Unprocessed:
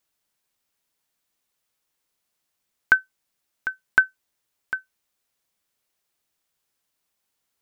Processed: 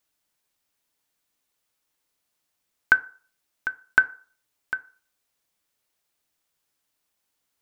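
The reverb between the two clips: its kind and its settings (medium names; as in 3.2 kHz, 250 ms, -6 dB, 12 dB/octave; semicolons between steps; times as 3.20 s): FDN reverb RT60 0.43 s, low-frequency decay 0.75×, high-frequency decay 0.55×, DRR 11.5 dB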